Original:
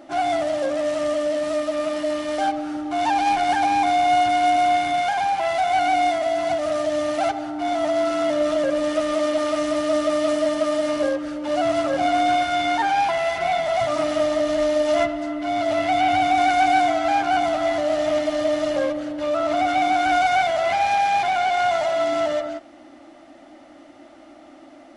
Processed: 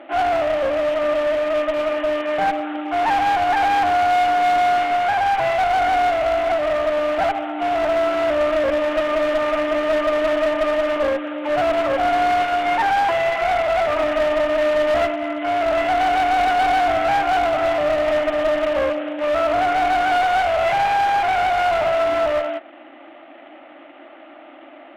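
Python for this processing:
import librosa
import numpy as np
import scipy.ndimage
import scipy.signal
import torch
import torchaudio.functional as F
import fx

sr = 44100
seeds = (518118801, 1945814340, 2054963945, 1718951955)

y = fx.cvsd(x, sr, bps=16000)
y = scipy.signal.sosfilt(scipy.signal.butter(2, 380.0, 'highpass', fs=sr, output='sos'), y)
y = fx.clip_asym(y, sr, top_db=-25.0, bottom_db=-17.5)
y = y * 10.0 ** (6.0 / 20.0)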